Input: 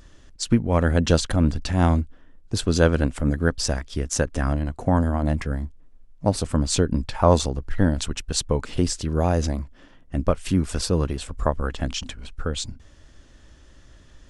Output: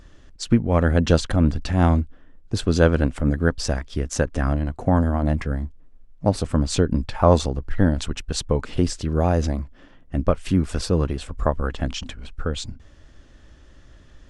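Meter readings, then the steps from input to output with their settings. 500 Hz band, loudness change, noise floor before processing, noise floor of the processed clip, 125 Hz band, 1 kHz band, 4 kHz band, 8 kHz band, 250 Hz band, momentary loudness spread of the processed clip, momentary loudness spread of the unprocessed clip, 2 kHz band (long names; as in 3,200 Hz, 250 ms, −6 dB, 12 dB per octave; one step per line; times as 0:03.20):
+1.5 dB, +1.0 dB, −51 dBFS, −49 dBFS, +1.5 dB, +0.5 dB, −2.0 dB, −4.0 dB, +1.5 dB, 11 LU, 10 LU, +0.5 dB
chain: high-shelf EQ 5,000 Hz −8.5 dB
notch filter 960 Hz, Q 23
level +1.5 dB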